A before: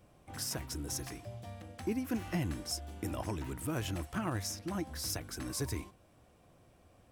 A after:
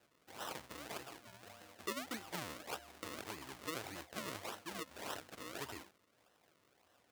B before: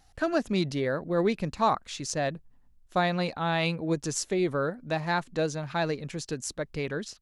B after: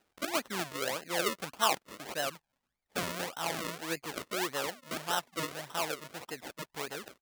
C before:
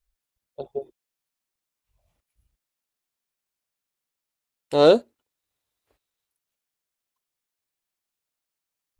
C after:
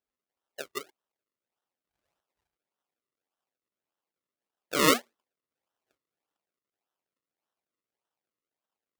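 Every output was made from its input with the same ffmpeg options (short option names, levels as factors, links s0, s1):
-af "acrusher=samples=38:mix=1:aa=0.000001:lfo=1:lforange=38:lforate=1.7,highpass=f=960:p=1,volume=0.891"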